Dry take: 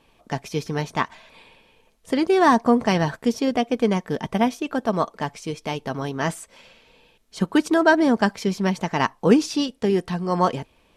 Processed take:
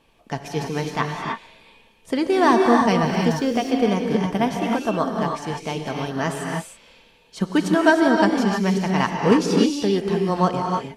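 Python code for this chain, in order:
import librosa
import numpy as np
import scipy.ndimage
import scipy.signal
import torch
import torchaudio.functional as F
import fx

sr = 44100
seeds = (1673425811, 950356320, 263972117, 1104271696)

y = fx.dmg_noise_colour(x, sr, seeds[0], colour='pink', level_db=-55.0, at=(3.02, 3.7), fade=0.02)
y = fx.rev_gated(y, sr, seeds[1], gate_ms=340, shape='rising', drr_db=1.0)
y = F.gain(torch.from_numpy(y), -1.0).numpy()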